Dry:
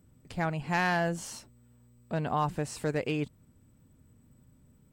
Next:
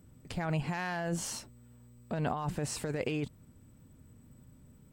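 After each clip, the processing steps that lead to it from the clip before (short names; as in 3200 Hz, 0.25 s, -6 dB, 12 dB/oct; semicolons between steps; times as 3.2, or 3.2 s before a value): negative-ratio compressor -33 dBFS, ratio -1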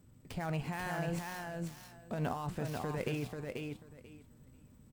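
switching dead time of 0.061 ms; feedback echo 0.489 s, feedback 17%, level -4 dB; flange 0.76 Hz, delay 7.3 ms, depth 9.1 ms, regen +79%; gain +1 dB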